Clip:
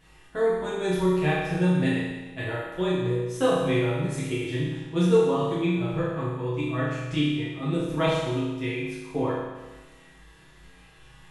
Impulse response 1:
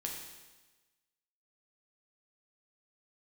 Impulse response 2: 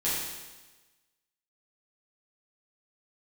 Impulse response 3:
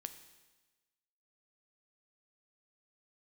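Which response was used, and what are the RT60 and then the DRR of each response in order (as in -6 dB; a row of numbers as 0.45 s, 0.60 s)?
2; 1.2 s, 1.2 s, 1.2 s; -0.5 dB, -10.0 dB, 9.0 dB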